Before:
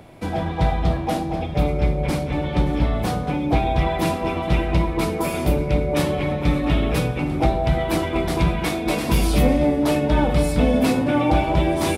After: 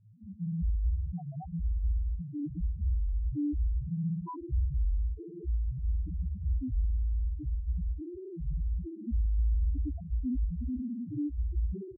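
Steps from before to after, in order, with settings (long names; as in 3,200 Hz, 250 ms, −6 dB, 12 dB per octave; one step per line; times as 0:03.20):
sample-and-hold tremolo 1.3 Hz
spring reverb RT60 1.3 s, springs 55 ms, chirp 65 ms, DRR −4 dB
spectral peaks only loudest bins 2
downward compressor 12 to 1, threshold −28 dBFS, peak gain reduction 19 dB
phaser with its sweep stopped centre 1,600 Hz, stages 4
double-tracking delay 17 ms −2 dB
feedback echo with a low-pass in the loop 899 ms, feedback 65%, low-pass 1,400 Hz, level −17 dB
spectral peaks only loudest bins 1
wow of a warped record 33 1/3 rpm, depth 250 cents
level +3 dB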